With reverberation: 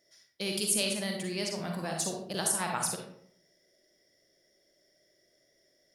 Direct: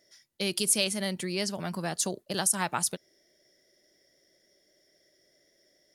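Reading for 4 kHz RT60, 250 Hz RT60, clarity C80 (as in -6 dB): 0.40 s, 0.75 s, 7.0 dB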